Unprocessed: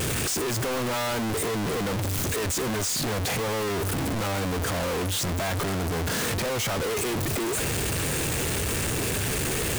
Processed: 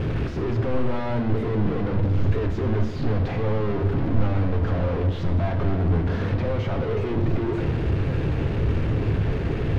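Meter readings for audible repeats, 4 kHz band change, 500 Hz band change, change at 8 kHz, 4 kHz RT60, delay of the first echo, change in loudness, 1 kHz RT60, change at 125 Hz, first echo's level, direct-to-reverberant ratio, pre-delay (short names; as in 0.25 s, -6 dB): none, -13.0 dB, +1.5 dB, under -30 dB, 1.1 s, none, +2.0 dB, 1.1 s, +8.0 dB, none, 5.0 dB, 7 ms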